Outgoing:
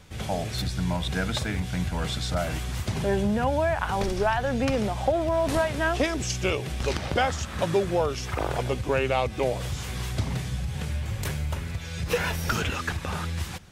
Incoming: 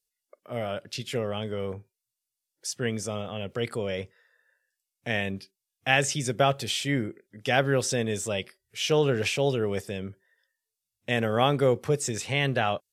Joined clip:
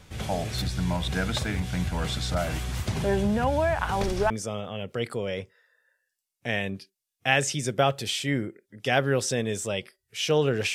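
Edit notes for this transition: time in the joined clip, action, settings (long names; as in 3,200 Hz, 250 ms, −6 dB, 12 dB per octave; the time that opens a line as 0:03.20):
outgoing
0:04.30: continue with incoming from 0:02.91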